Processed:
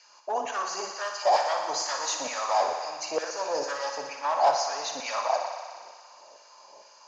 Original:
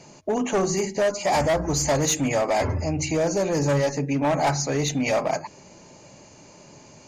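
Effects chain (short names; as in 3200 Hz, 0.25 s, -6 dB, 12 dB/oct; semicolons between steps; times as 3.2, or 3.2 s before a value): LFO high-pass saw down 2.2 Hz 550–1800 Hz; speaker cabinet 110–6500 Hz, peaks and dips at 520 Hz +5 dB, 1000 Hz +6 dB, 2100 Hz -9 dB, 5100 Hz +8 dB; on a send: thinning echo 60 ms, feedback 83%, high-pass 310 Hz, level -7.5 dB; on the sum: gain -7 dB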